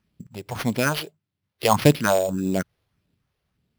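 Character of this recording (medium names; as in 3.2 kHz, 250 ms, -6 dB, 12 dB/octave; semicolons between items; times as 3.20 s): phasing stages 4, 1.7 Hz, lowest notch 210–1500 Hz; aliases and images of a low sample rate 7.6 kHz, jitter 0%; random-step tremolo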